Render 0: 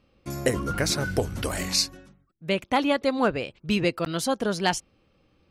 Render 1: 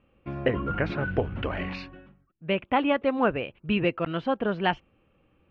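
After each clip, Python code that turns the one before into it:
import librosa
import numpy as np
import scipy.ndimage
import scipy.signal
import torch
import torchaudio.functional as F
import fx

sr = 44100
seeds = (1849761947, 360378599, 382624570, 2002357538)

y = scipy.signal.sosfilt(scipy.signal.cheby1(4, 1.0, 2900.0, 'lowpass', fs=sr, output='sos'), x)
y = fx.notch(y, sr, hz=2100.0, q=28.0)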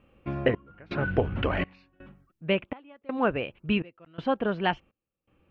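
y = fx.rider(x, sr, range_db=5, speed_s=0.5)
y = fx.step_gate(y, sr, bpm=165, pattern='xxxxxx....xx', floor_db=-24.0, edge_ms=4.5)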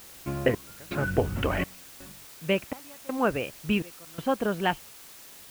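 y = fx.quant_dither(x, sr, seeds[0], bits=8, dither='triangular')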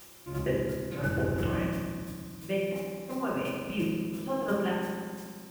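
y = fx.chopper(x, sr, hz=2.9, depth_pct=65, duty_pct=10)
y = fx.rev_fdn(y, sr, rt60_s=1.9, lf_ratio=1.55, hf_ratio=0.7, size_ms=17.0, drr_db=-7.5)
y = y * librosa.db_to_amplitude(-4.5)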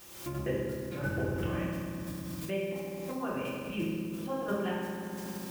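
y = fx.recorder_agc(x, sr, target_db=-26.5, rise_db_per_s=54.0, max_gain_db=30)
y = y * librosa.db_to_amplitude(-3.5)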